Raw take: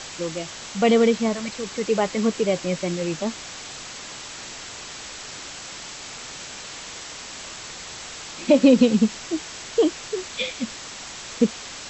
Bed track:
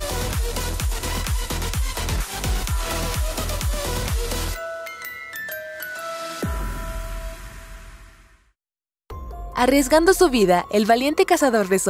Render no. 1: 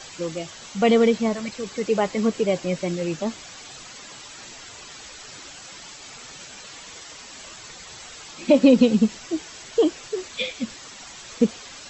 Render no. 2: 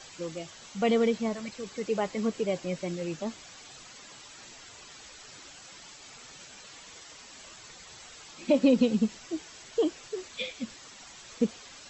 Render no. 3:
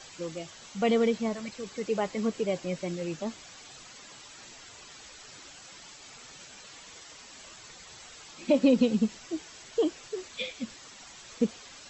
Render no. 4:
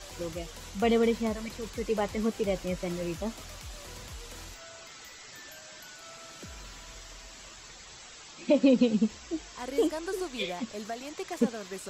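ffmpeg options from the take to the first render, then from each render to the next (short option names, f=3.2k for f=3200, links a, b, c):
-af "afftdn=nr=9:nf=-38"
-af "volume=-7.5dB"
-af anull
-filter_complex "[1:a]volume=-21dB[a];[0:a][a]amix=inputs=2:normalize=0"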